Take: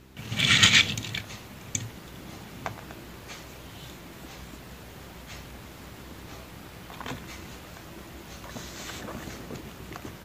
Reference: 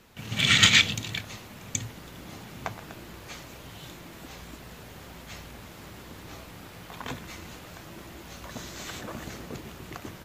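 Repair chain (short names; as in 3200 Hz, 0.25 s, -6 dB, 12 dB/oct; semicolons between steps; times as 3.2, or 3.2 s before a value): de-hum 65.3 Hz, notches 6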